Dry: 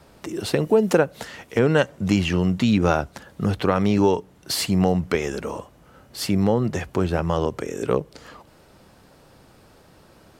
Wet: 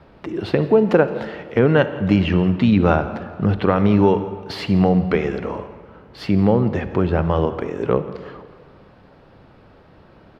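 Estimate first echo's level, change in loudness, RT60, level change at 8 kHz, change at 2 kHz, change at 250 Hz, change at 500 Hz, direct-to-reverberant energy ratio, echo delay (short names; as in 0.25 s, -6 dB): -20.5 dB, +3.5 dB, 2.0 s, under -15 dB, +2.0 dB, +4.0 dB, +3.5 dB, 11.0 dB, 0.168 s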